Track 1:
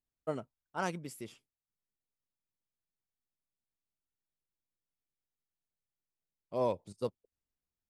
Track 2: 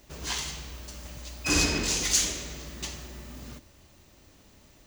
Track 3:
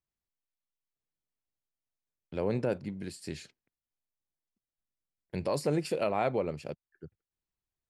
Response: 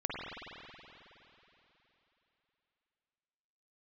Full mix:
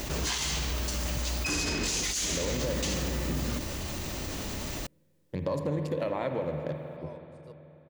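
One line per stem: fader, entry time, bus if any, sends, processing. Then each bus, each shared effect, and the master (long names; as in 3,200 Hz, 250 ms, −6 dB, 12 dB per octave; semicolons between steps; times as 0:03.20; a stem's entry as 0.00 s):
−16.0 dB, 0.45 s, no send, upward compression, threshold −36 dBFS
−4.0 dB, 0.00 s, no send, envelope flattener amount 70%
+1.5 dB, 0.00 s, send −6 dB, adaptive Wiener filter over 41 samples; EQ curve with evenly spaced ripples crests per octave 1.1, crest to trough 8 dB; downward compressor, threshold −32 dBFS, peak gain reduction 9.5 dB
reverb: on, RT60 3.4 s, pre-delay 46 ms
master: brickwall limiter −20.5 dBFS, peak gain reduction 9.5 dB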